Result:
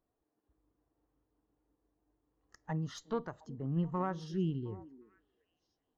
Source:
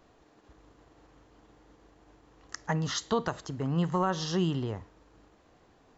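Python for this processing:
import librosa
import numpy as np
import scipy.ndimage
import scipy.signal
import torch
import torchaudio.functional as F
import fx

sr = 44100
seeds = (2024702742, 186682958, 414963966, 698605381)

y = fx.diode_clip(x, sr, knee_db=-33.0)
y = fx.spec_box(y, sr, start_s=4.28, length_s=0.75, low_hz=490.0, high_hz=1300.0, gain_db=-27)
y = fx.echo_stepped(y, sr, ms=357, hz=290.0, octaves=1.4, feedback_pct=70, wet_db=-9)
y = fx.spectral_expand(y, sr, expansion=1.5)
y = y * 10.0 ** (-5.5 / 20.0)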